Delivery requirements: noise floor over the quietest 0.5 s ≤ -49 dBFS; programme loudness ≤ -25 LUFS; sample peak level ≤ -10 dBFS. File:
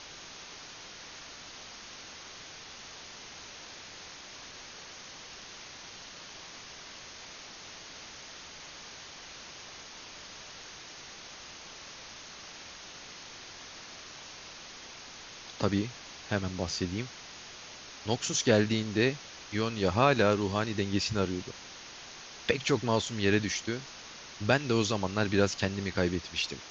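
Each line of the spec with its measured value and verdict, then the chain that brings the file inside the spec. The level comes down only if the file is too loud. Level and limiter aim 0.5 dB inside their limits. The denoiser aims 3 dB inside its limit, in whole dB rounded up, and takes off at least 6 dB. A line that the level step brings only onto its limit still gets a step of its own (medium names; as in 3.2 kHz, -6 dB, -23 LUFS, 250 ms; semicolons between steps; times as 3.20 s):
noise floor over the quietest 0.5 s -47 dBFS: fail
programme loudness -30.0 LUFS: pass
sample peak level -8.0 dBFS: fail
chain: noise reduction 6 dB, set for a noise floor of -47 dBFS; peak limiter -10.5 dBFS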